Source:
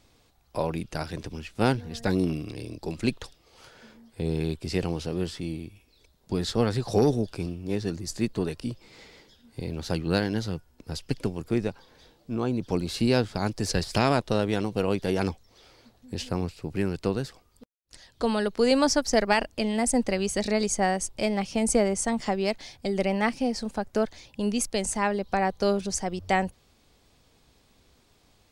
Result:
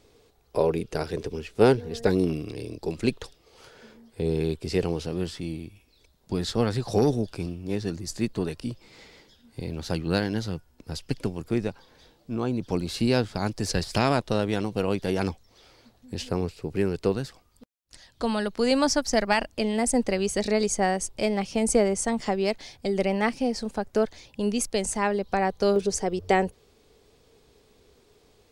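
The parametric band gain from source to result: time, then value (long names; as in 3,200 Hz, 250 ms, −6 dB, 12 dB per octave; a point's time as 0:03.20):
parametric band 430 Hz 0.44 octaves
+14.5 dB
from 0:02.09 +6.5 dB
from 0:05.06 −0.5 dB
from 0:16.28 +6.5 dB
from 0:17.12 −3.5 dB
from 0:19.56 +3.5 dB
from 0:25.76 +13.5 dB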